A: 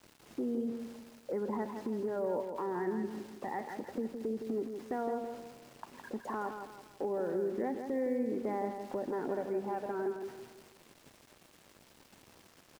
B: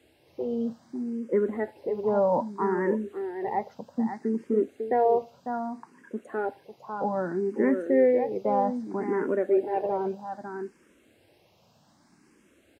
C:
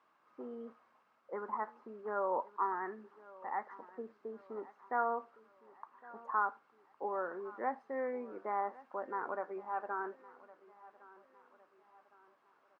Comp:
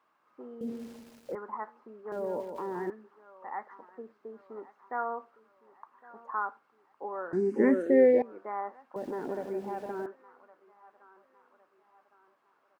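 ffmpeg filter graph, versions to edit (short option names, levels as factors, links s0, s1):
-filter_complex "[0:a]asplit=3[s0][s1][s2];[2:a]asplit=5[s3][s4][s5][s6][s7];[s3]atrim=end=0.612[s8];[s0]atrim=start=0.608:end=1.352[s9];[s4]atrim=start=1.348:end=2.122[s10];[s1]atrim=start=2.118:end=2.902[s11];[s5]atrim=start=2.898:end=7.332[s12];[1:a]atrim=start=7.328:end=8.222[s13];[s6]atrim=start=8.218:end=8.962[s14];[s2]atrim=start=8.958:end=10.062[s15];[s7]atrim=start=10.058[s16];[s8][s9]acrossfade=d=0.004:c1=hsin:c2=hsin[s17];[s17][s10]acrossfade=d=0.004:c1=hsin:c2=hsin[s18];[s18][s11]acrossfade=d=0.004:c1=hsin:c2=hsin[s19];[s19][s12]acrossfade=d=0.004:c1=hsin:c2=hsin[s20];[s20][s13]acrossfade=d=0.004:c1=hsin:c2=hsin[s21];[s21][s14]acrossfade=d=0.004:c1=hsin:c2=hsin[s22];[s22][s15]acrossfade=d=0.004:c1=hsin:c2=hsin[s23];[s23][s16]acrossfade=d=0.004:c1=hsin:c2=hsin"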